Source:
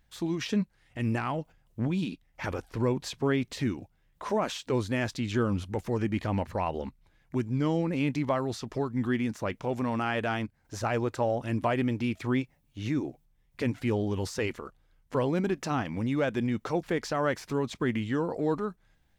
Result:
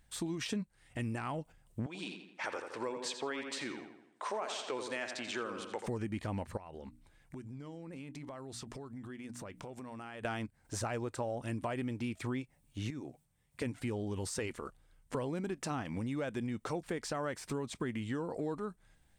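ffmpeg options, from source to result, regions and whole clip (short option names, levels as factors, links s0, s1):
-filter_complex "[0:a]asettb=1/sr,asplit=3[s0][s1][s2];[s0]atrim=end=1.864[s3];[s1]atrim=start=1.86:end=5.87,asetpts=PTS-STARTPTS,afade=t=in:d=0.004:c=qsin,afade=t=out:st=4.006:d=0.004:c=qsin,highpass=520,lowpass=6800,asplit=2[s4][s5];[s5]adelay=84,lowpass=f=4100:p=1,volume=0.422,asplit=2[s6][s7];[s7]adelay=84,lowpass=f=4100:p=1,volume=0.51,asplit=2[s8][s9];[s9]adelay=84,lowpass=f=4100:p=1,volume=0.51,asplit=2[s10][s11];[s11]adelay=84,lowpass=f=4100:p=1,volume=0.51,asplit=2[s12][s13];[s13]adelay=84,lowpass=f=4100:p=1,volume=0.51,asplit=2[s14][s15];[s15]adelay=84,lowpass=f=4100:p=1,volume=0.51[s16];[s4][s6][s8][s10][s12][s14][s16]amix=inputs=7:normalize=0,atrim=end_sample=176841[s17];[s2]atrim=start=5.866[s18];[s3][s17]acrossfade=d=0.004:c1=hsin:c2=qsin[s19];[s19][s18]acrossfade=d=0.004:c1=qsin:c2=hsin,asettb=1/sr,asplit=3[s20][s21][s22];[s20]atrim=end=6.574[s23];[s21]atrim=start=6.57:end=10.25,asetpts=PTS-STARTPTS,afade=t=in:d=0.004:c=qsin,afade=t=out:st=3.676:d=0.004:c=qsin,bandreject=f=60:t=h:w=6,bandreject=f=120:t=h:w=6,bandreject=f=180:t=h:w=6,bandreject=f=240:t=h:w=6,bandreject=f=300:t=h:w=6,acompressor=threshold=0.00794:ratio=12:attack=3.2:release=140:knee=1:detection=peak[s24];[s22]atrim=start=10.246[s25];[s23][s24]acrossfade=d=0.004:c1=hsin:c2=qsin[s26];[s26][s25]acrossfade=d=0.004:c1=qsin:c2=hsin,asettb=1/sr,asplit=3[s27][s28][s29];[s27]atrim=end=12.904[s30];[s28]atrim=start=12.9:end=13.62,asetpts=PTS-STARTPTS,afade=t=in:d=0.004:c=qsin,afade=t=out:st=0.716:d=0.004:c=qsin,highpass=76,equalizer=f=330:t=o:w=0.41:g=-4,acompressor=threshold=0.00251:ratio=1.5:attack=3.2:release=140:knee=1:detection=peak[s31];[s29]atrim=start=13.616[s32];[s30][s31]acrossfade=d=0.004:c1=hsin:c2=qsin[s33];[s33][s32]acrossfade=d=0.004:c1=qsin:c2=hsin,equalizer=f=8600:w=3.1:g=12.5,acompressor=threshold=0.0178:ratio=4"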